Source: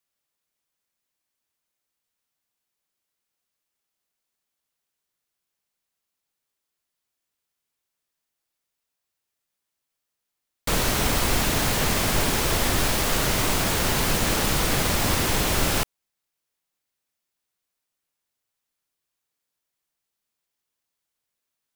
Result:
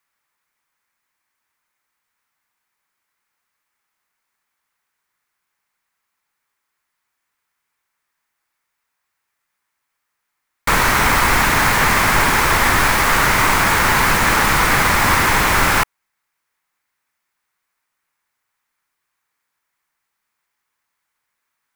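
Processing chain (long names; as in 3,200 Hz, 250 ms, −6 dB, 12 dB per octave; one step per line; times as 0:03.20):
flat-topped bell 1,400 Hz +10.5 dB
level +4 dB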